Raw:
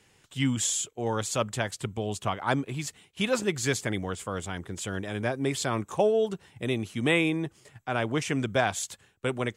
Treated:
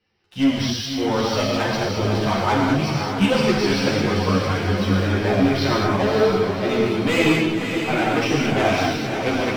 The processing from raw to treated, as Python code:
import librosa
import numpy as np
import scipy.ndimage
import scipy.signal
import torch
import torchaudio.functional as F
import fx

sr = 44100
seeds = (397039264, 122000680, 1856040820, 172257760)

p1 = fx.spec_quant(x, sr, step_db=15)
p2 = scipy.signal.sosfilt(scipy.signal.cheby1(10, 1.0, 5800.0, 'lowpass', fs=sr, output='sos'), p1)
p3 = fx.notch(p2, sr, hz=3400.0, q=15.0)
p4 = fx.leveller(p3, sr, passes=3)
p5 = p4 + fx.echo_diffused(p4, sr, ms=545, feedback_pct=57, wet_db=-6, dry=0)
p6 = fx.rev_gated(p5, sr, seeds[0], gate_ms=250, shape='flat', drr_db=-3.0)
y = fx.ensemble(p6, sr)